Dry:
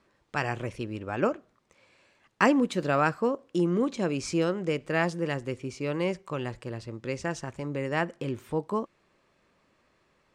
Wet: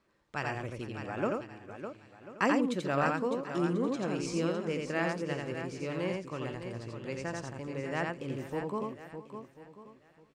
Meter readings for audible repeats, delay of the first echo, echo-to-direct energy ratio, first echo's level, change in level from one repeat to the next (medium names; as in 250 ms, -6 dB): 8, 86 ms, -1.5 dB, -3.0 dB, no regular repeats